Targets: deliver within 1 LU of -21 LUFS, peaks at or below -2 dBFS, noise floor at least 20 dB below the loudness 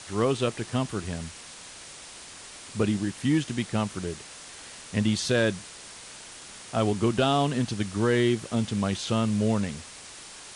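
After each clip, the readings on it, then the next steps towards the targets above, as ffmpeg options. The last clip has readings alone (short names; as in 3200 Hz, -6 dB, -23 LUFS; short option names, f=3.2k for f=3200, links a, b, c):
noise floor -45 dBFS; noise floor target -47 dBFS; loudness -27.0 LUFS; peak -11.5 dBFS; loudness target -21.0 LUFS
-> -af "afftdn=nr=6:nf=-45"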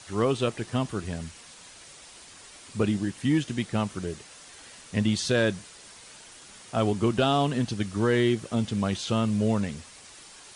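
noise floor -49 dBFS; loudness -27.0 LUFS; peak -11.5 dBFS; loudness target -21.0 LUFS
-> -af "volume=6dB"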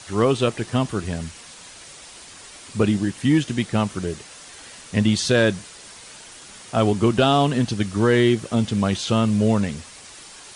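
loudness -21.0 LUFS; peak -5.5 dBFS; noise floor -43 dBFS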